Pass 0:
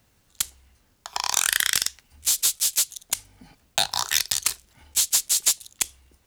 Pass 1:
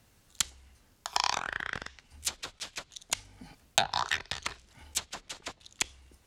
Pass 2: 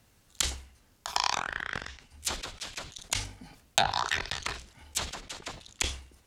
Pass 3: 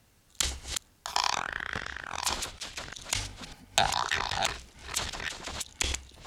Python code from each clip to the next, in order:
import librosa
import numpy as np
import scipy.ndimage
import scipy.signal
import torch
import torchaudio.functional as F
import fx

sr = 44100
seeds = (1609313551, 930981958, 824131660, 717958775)

y1 = fx.env_lowpass_down(x, sr, base_hz=980.0, full_db=-17.5)
y2 = fx.sustainer(y1, sr, db_per_s=110.0)
y3 = fx.reverse_delay(y2, sr, ms=588, wet_db=-5)